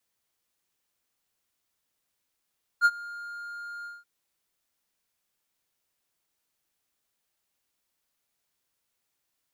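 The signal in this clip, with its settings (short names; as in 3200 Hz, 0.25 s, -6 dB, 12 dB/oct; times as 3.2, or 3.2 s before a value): ADSR triangle 1410 Hz, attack 44 ms, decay 47 ms, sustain -22 dB, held 1.04 s, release 0.191 s -12.5 dBFS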